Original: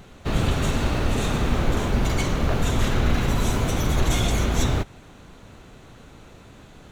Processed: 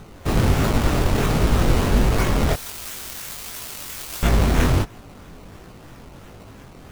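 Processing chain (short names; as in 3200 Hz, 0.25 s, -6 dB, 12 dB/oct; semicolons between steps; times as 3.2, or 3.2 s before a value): decimation with a swept rate 18×, swing 100% 3 Hz; 2.53–4.23 pre-emphasis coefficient 0.97; chorus 1.4 Hz, delay 17.5 ms, depth 6.5 ms; gain +7 dB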